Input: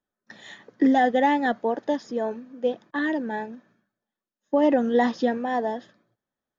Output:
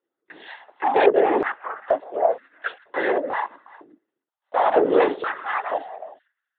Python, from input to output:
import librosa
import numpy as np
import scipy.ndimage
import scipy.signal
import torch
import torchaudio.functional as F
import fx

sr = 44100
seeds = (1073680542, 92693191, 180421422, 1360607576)

p1 = fx.dead_time(x, sr, dead_ms=0.082, at=(3.28, 4.76))
p2 = fx.noise_vocoder(p1, sr, seeds[0], bands=16)
p3 = fx.fold_sine(p2, sr, drive_db=11, ceiling_db=-6.0)
p4 = p2 + (p3 * librosa.db_to_amplitude(-5.0))
p5 = fx.air_absorb(p4, sr, metres=480.0, at=(1.06, 2.3))
p6 = p5 + 10.0 ** (-20.5 / 20.0) * np.pad(p5, (int(366 * sr / 1000.0), 0))[:len(p5)]
p7 = fx.lpc_vocoder(p6, sr, seeds[1], excitation='whisper', order=16)
p8 = fx.filter_held_highpass(p7, sr, hz=2.1, low_hz=340.0, high_hz=1600.0)
y = p8 * librosa.db_to_amplitude(-9.0)